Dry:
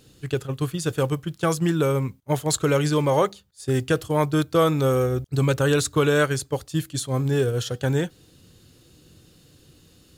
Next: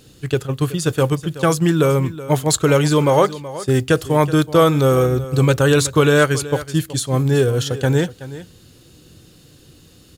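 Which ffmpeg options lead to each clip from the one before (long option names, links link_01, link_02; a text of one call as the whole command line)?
ffmpeg -i in.wav -af "aecho=1:1:375:0.168,volume=6dB" out.wav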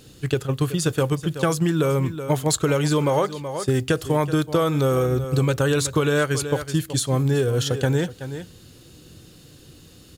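ffmpeg -i in.wav -af "acompressor=threshold=-17dB:ratio=6" out.wav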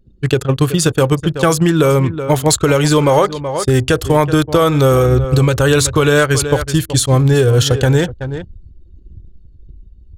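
ffmpeg -i in.wav -af "anlmdn=2.51,asubboost=boost=6.5:cutoff=68,alimiter=level_in=11dB:limit=-1dB:release=50:level=0:latency=1,volume=-1dB" out.wav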